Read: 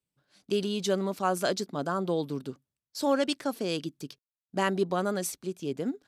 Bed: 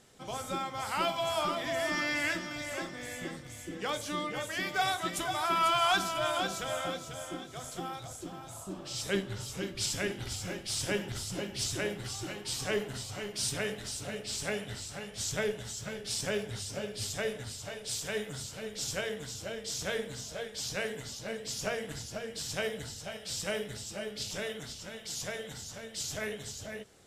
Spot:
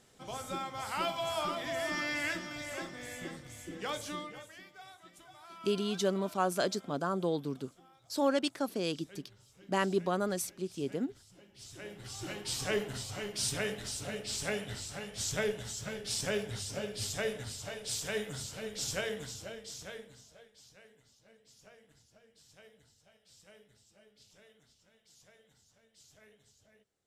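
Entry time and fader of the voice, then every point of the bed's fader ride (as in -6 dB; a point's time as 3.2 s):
5.15 s, -3.0 dB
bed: 4.08 s -3 dB
4.75 s -22.5 dB
11.44 s -22.5 dB
12.32 s -0.5 dB
19.19 s -0.5 dB
20.8 s -24.5 dB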